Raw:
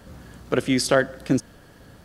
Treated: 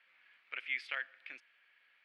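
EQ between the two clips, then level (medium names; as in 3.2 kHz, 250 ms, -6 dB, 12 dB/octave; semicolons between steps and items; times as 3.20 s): band-pass filter 2.3 kHz, Q 5.5; distance through air 450 m; differentiator; +14.5 dB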